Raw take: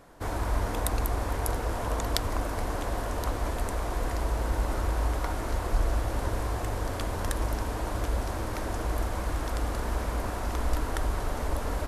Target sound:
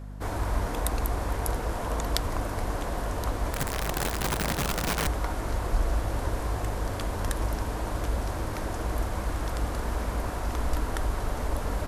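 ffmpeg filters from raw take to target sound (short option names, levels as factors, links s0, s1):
-filter_complex "[0:a]aeval=exprs='val(0)+0.0126*(sin(2*PI*50*n/s)+sin(2*PI*2*50*n/s)/2+sin(2*PI*3*50*n/s)/3+sin(2*PI*4*50*n/s)/4+sin(2*PI*5*50*n/s)/5)':c=same,asettb=1/sr,asplit=3[s0][s1][s2];[s0]atrim=end=3.524[s3];[s1]atrim=start=3.52:end=5.07,asetpts=PTS-STARTPTS,afade=t=in:d=0.004:c=qsin,afade=t=out:st=1.546:d=0.004:c=qsin,aeval=exprs='(mod(13.3*val(0)+1,2)-1)/13.3':c=same[s4];[s2]atrim=start=5.066[s5];[s3][s4]acrossfade=d=0.004:c1=hsin:c2=qsin[s6];[s6][s5]acrossfade=d=0.004:c1=qsin:c2=hsin"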